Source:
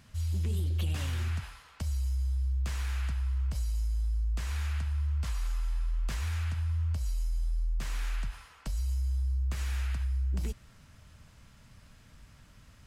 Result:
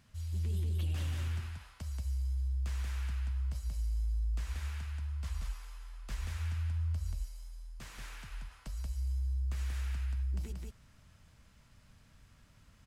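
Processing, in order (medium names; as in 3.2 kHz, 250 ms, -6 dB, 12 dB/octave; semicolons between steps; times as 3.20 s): delay 182 ms -3 dB; trim -7.5 dB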